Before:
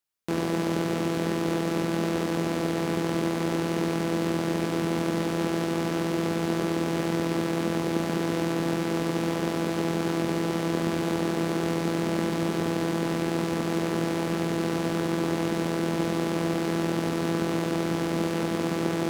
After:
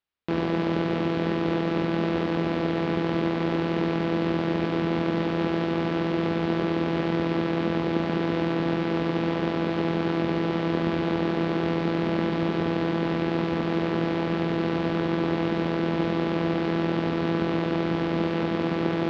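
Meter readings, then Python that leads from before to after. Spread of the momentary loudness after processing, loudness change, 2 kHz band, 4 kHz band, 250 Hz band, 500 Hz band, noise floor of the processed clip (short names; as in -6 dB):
1 LU, +1.5 dB, +1.5 dB, -0.5 dB, +1.5 dB, +1.5 dB, -28 dBFS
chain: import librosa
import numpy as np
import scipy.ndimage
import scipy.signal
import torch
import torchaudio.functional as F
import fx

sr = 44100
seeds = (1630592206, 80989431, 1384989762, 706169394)

y = scipy.signal.sosfilt(scipy.signal.butter(4, 4000.0, 'lowpass', fs=sr, output='sos'), x)
y = fx.peak_eq(y, sr, hz=72.0, db=5.5, octaves=0.39)
y = y * 10.0 ** (1.5 / 20.0)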